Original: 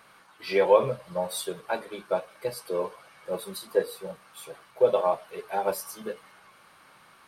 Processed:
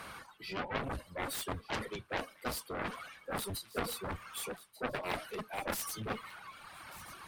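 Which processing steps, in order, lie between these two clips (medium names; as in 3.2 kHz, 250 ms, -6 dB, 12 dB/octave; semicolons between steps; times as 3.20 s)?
octave divider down 1 oct, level +2 dB; reverse; compression 10:1, threshold -37 dBFS, peak gain reduction 24 dB; reverse; reverb removal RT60 1.8 s; Chebyshev shaper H 7 -6 dB, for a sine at -26.5 dBFS; feedback echo behind a high-pass 1189 ms, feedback 41%, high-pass 2.6 kHz, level -15.5 dB; trim +1 dB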